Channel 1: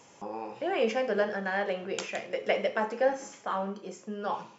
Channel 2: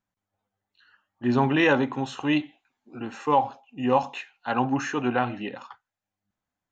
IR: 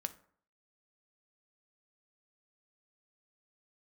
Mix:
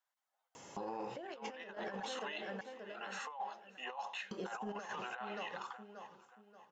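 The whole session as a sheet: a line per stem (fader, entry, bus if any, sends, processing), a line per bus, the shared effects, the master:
-2.0 dB, 0.55 s, muted 2.03–4.31, no send, echo send -11 dB, compressor 6:1, threshold -28 dBFS, peak gain reduction 8.5 dB
-5.0 dB, 0.00 s, no send, echo send -24 dB, HPF 650 Hz 24 dB/oct; compressor 10:1, threshold -26 dBFS, peak gain reduction 10 dB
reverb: off
echo: feedback echo 0.581 s, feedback 35%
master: notch 2400 Hz, Q 11; negative-ratio compressor -39 dBFS, ratio -0.5; limiter -33 dBFS, peak gain reduction 10.5 dB

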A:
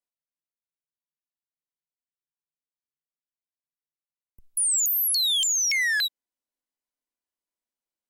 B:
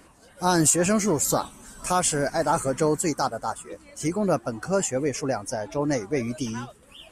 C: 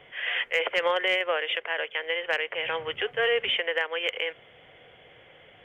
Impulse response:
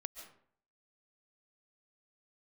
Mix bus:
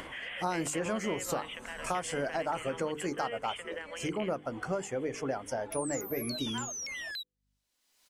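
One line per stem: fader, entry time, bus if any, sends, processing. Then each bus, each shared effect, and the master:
-15.0 dB, 1.15 s, bus A, no send, hum 50 Hz, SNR 28 dB; bell 4400 Hz +9 dB 2.5 oct
-1.5 dB, 0.00 s, no bus, no send, tone controls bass -5 dB, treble -11 dB; compressor 6:1, threshold -28 dBFS, peak gain reduction 10 dB
-6.0 dB, 0.00 s, bus A, no send, dry
bus A: 0.0 dB, compressor 2:1, threshold -48 dBFS, peak gain reduction 12 dB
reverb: off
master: notches 50/100/150/200/250/300/350/400/450/500 Hz; upward compressor, threshold -35 dBFS

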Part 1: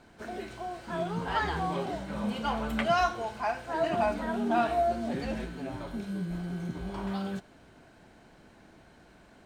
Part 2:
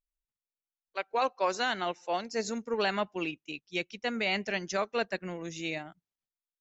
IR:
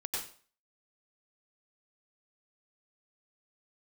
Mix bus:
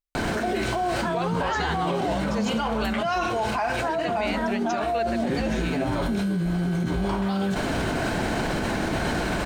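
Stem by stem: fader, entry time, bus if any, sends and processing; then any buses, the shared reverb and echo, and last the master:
-2.0 dB, 0.15 s, no send, fast leveller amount 100%
0.0 dB, 0.00 s, no send, dry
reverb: off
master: limiter -16.5 dBFS, peak gain reduction 5 dB

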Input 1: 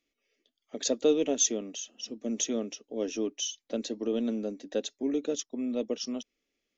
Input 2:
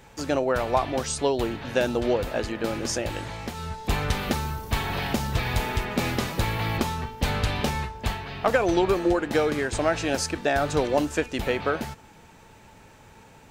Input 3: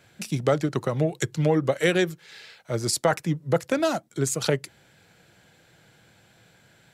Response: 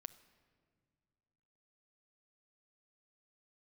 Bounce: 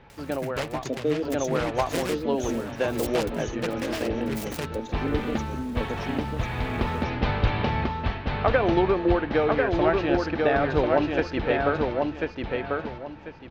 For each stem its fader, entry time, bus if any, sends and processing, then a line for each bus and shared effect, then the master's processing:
-6.5 dB, 0.00 s, no send, echo send -4.5 dB, tilt shelf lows +7 dB
0.0 dB, 0.00 s, no send, echo send -3 dB, Bessel low-pass 2700 Hz, order 8; auto duck -23 dB, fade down 1.65 s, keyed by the first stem
-10.0 dB, 0.10 s, no send, no echo send, upward compressor, threshold -30 dBFS; noise-modulated delay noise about 1700 Hz, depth 0.2 ms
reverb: off
echo: feedback echo 1.043 s, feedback 26%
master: dry

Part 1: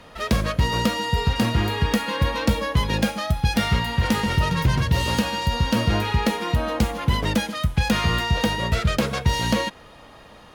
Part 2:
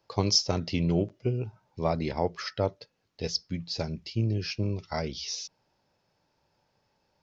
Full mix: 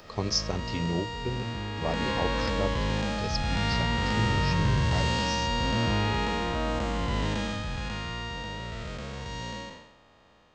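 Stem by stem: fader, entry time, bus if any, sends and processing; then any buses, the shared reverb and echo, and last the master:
1.75 s -10 dB -> 2.06 s -2 dB -> 7.53 s -2 dB -> 8.05 s -11 dB, 0.00 s, no send, time blur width 0.309 s; steep low-pass 8300 Hz 96 dB/oct
-4.0 dB, 0.00 s, no send, upward compressor, threshold -35 dBFS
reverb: off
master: dry

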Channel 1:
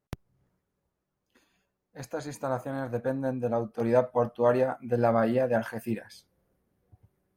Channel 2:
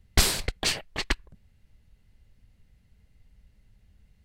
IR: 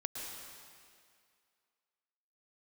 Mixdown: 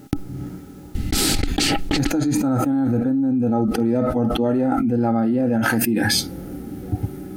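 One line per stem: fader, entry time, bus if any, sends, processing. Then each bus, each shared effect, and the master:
-0.5 dB, 0.00 s, no send, harmonic-percussive split percussive -9 dB
-5.0 dB, 0.95 s, no send, auto duck -7 dB, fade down 0.25 s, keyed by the first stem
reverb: off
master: bell 1000 Hz -14 dB 1.5 oct; small resonant body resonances 290/810/1300 Hz, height 18 dB, ringing for 50 ms; fast leveller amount 100%

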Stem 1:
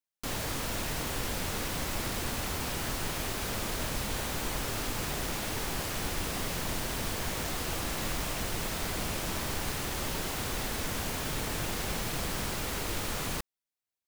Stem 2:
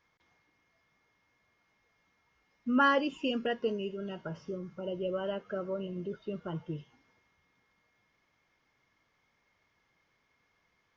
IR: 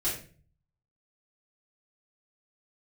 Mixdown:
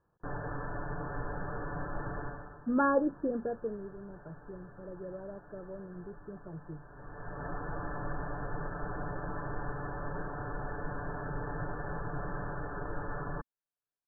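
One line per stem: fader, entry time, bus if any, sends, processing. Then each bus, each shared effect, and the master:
-3.5 dB, 0.00 s, no send, comb 6.9 ms, depth 73%; auto duck -16 dB, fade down 0.45 s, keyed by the second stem
3.22 s -3 dB -> 3.89 s -14.5 dB, 0.00 s, no send, tilt shelf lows +9 dB, about 1100 Hz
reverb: off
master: brick-wall FIR low-pass 1800 Hz; bell 250 Hz -7.5 dB 0.25 oct

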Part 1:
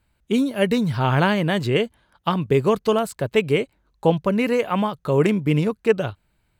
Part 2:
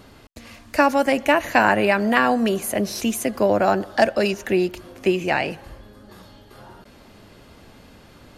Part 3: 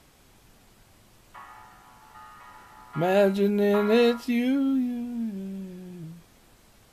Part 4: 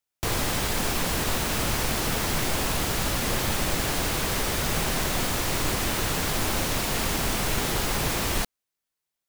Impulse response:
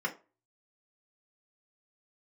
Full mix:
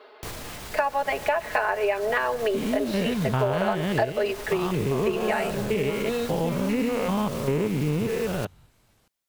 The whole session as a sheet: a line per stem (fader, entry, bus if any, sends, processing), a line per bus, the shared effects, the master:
+1.5 dB, 2.35 s, no send, stepped spectrum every 0.2 s
+1.5 dB, 0.00 s, no send, elliptic band-pass 420–4300 Hz; high shelf 2300 Hz -9 dB; comb 4.7 ms, depth 90%
-7.5 dB, 2.15 s, no send, dry
+2.0 dB, 0.00 s, no send, limiter -19.5 dBFS, peak gain reduction 7 dB; auto duck -11 dB, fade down 0.40 s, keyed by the second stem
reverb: off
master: compressor 6:1, threshold -21 dBFS, peak gain reduction 13.5 dB

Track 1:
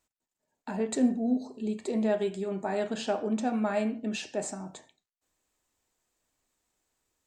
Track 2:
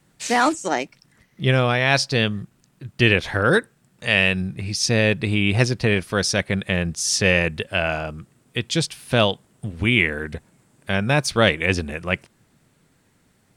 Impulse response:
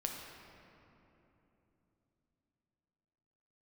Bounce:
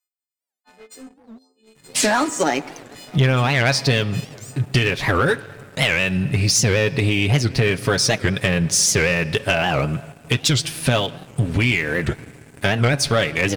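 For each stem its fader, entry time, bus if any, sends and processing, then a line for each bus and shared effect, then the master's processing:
-11.0 dB, 0.00 s, no send, frequency quantiser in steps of 3 st; HPF 510 Hz 6 dB/oct; soft clip -32 dBFS, distortion -9 dB
+2.5 dB, 1.75 s, send -13.5 dB, compressor 20:1, threshold -25 dBFS, peak gain reduction 15 dB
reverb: on, RT60 3.3 s, pre-delay 7 ms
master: comb 7.2 ms, depth 51%; sample leveller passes 2; record warp 78 rpm, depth 250 cents

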